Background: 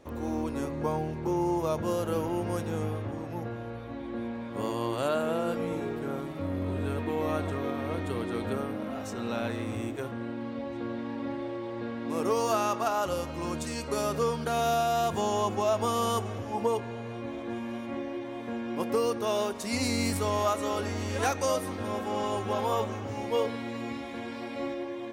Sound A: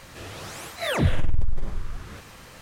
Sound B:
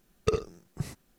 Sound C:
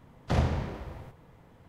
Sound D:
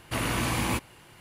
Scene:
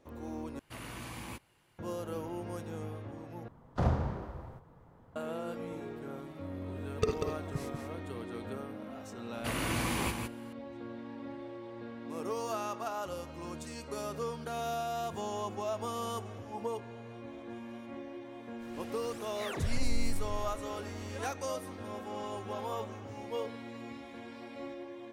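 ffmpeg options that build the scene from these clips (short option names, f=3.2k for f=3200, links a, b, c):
-filter_complex "[4:a]asplit=2[a][b];[0:a]volume=-9dB[c];[3:a]highshelf=f=1.7k:t=q:w=1.5:g=-7[d];[2:a]aecho=1:1:190:0.473[e];[b]aecho=1:1:158:0.531[f];[1:a]aphaser=in_gain=1:out_gain=1:delay=3:decay=0.4:speed=1.6:type=triangular[g];[c]asplit=3[h][i][j];[h]atrim=end=0.594[k];[a]atrim=end=1.2,asetpts=PTS-STARTPTS,volume=-16dB[l];[i]atrim=start=1.786:end=3.484[m];[d]atrim=end=1.68,asetpts=PTS-STARTPTS,volume=-3dB[n];[j]atrim=start=5.156[o];[e]atrim=end=1.18,asetpts=PTS-STARTPTS,volume=-4dB,afade=t=in:d=0.004:c=hsin,afade=t=out:st=1.176:d=0.004:c=hsin,adelay=6750[p];[f]atrim=end=1.2,asetpts=PTS-STARTPTS,volume=-6dB,afade=t=in:d=0.004:c=hsin,afade=t=out:st=1.196:d=0.004:c=hsin,adelay=9330[q];[g]atrim=end=2.61,asetpts=PTS-STARTPTS,volume=-14dB,afade=t=in:d=0.05,afade=t=out:st=2.56:d=0.05,adelay=18580[r];[k][l]acrossfade=d=0.004:c1=hsin:c2=hsin[s];[s][m]acrossfade=d=0.004:c1=hsin:c2=hsin[t];[t][n]acrossfade=d=0.004:c1=hsin:c2=hsin[u];[u][o]acrossfade=d=0.004:c1=hsin:c2=hsin[v];[v][p][q][r]amix=inputs=4:normalize=0"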